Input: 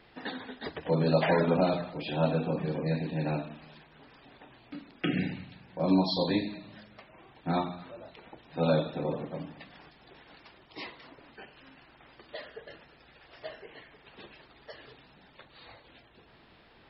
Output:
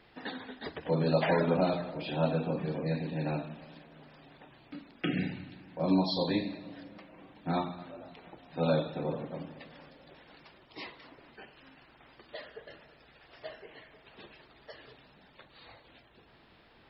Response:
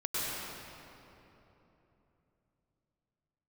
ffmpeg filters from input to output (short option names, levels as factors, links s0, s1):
-filter_complex "[0:a]asplit=2[s0][s1];[s1]equalizer=f=250:t=o:w=0.67:g=6,equalizer=f=630:t=o:w=0.67:g=6,equalizer=f=1600:t=o:w=0.67:g=4,equalizer=f=4000:t=o:w=0.67:g=-7[s2];[1:a]atrim=start_sample=2205,adelay=54[s3];[s2][s3]afir=irnorm=-1:irlink=0,volume=0.0376[s4];[s0][s4]amix=inputs=2:normalize=0,volume=0.794"